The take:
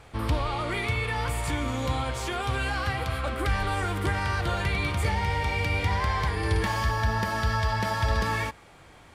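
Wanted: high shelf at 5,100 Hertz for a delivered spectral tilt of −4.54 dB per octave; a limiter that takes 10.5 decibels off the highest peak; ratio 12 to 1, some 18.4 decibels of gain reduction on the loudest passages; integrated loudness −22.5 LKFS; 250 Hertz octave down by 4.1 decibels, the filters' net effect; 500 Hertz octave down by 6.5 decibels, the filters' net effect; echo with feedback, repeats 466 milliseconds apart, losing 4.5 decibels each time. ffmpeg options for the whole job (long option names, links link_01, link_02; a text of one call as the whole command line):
ffmpeg -i in.wav -af "equalizer=frequency=250:width_type=o:gain=-3.5,equalizer=frequency=500:width_type=o:gain=-7.5,highshelf=frequency=5100:gain=7.5,acompressor=threshold=-40dB:ratio=12,alimiter=level_in=17dB:limit=-24dB:level=0:latency=1,volume=-17dB,aecho=1:1:466|932|1398|1864|2330|2796|3262|3728|4194:0.596|0.357|0.214|0.129|0.0772|0.0463|0.0278|0.0167|0.01,volume=25dB" out.wav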